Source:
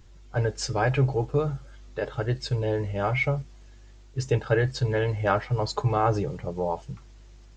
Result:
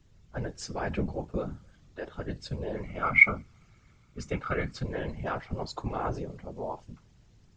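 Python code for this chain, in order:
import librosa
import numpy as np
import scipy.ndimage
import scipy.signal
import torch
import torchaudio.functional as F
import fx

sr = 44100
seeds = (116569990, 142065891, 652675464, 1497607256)

y = fx.small_body(x, sr, hz=(1300.0, 2200.0), ring_ms=30, db=17, at=(2.76, 4.83))
y = fx.whisperise(y, sr, seeds[0])
y = y * librosa.db_to_amplitude(-8.5)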